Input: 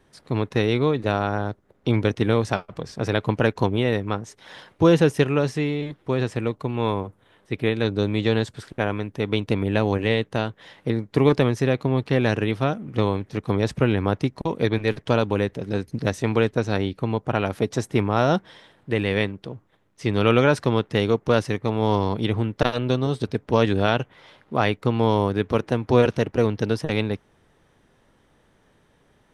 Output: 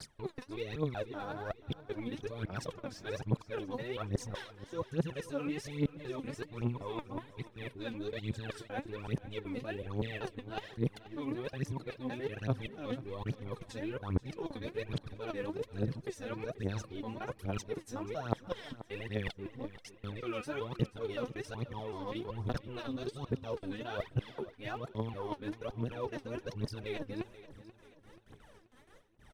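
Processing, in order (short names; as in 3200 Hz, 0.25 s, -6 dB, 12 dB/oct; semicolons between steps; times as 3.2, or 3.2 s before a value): local time reversal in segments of 0.189 s; gate with hold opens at -50 dBFS; transient shaper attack -7 dB, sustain -2 dB; reverse; compressor 10:1, threshold -37 dBFS, peak gain reduction 23.5 dB; reverse; phaser 1.2 Hz, delay 4.1 ms, feedback 78%; on a send: feedback echo 0.483 s, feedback 45%, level -16 dB; on the sum: gain -1 dB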